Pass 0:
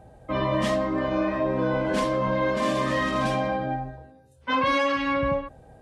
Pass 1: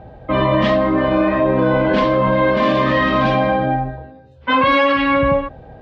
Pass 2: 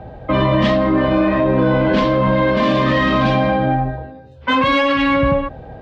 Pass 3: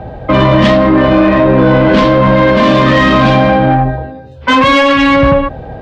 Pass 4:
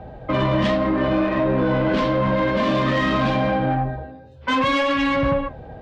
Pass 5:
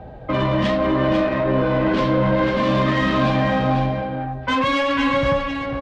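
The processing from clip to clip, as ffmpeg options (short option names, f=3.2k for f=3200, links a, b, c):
-filter_complex "[0:a]lowpass=f=4k:w=0.5412,lowpass=f=4k:w=1.3066,asplit=2[a][b];[b]alimiter=limit=-21dB:level=0:latency=1,volume=-1dB[c];[a][c]amix=inputs=2:normalize=0,volume=5.5dB"
-filter_complex "[0:a]acrossover=split=300|3000[a][b][c];[b]acompressor=threshold=-22dB:ratio=2[d];[a][d][c]amix=inputs=3:normalize=0,asplit=2[e][f];[f]asoftclip=type=tanh:threshold=-16dB,volume=-4dB[g];[e][g]amix=inputs=2:normalize=0"
-af "acontrast=90,volume=1.5dB"
-af "flanger=delay=3.9:depth=8.6:regen=-73:speed=0.6:shape=triangular,volume=-7.5dB"
-af "aecho=1:1:497:0.501"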